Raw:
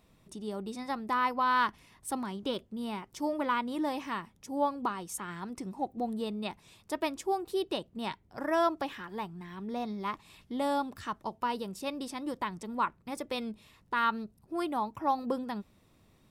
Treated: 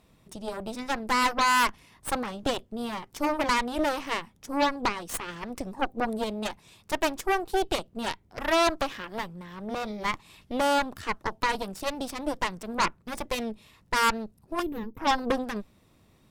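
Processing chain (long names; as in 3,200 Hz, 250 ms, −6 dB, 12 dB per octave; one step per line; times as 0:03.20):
harmonic generator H 8 −11 dB, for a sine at −16.5 dBFS
gain on a spectral selection 0:14.62–0:14.98, 530–12,000 Hz −19 dB
level +3 dB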